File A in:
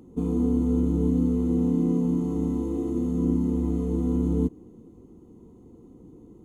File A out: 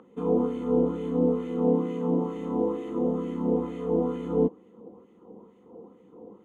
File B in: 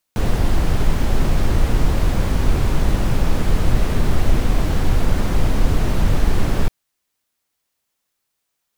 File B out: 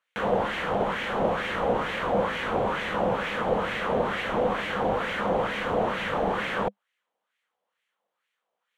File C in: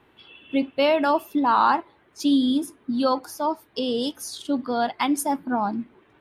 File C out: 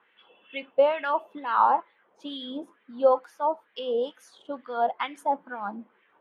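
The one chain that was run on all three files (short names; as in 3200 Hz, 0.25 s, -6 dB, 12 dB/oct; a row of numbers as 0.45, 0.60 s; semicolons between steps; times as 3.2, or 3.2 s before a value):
LFO band-pass sine 2.2 Hz 700–2100 Hz; thirty-one-band EQ 200 Hz +11 dB, 500 Hz +11 dB, 3150 Hz +6 dB, 5000 Hz -8 dB; match loudness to -27 LUFS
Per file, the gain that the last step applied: +12.5, +7.0, +1.0 dB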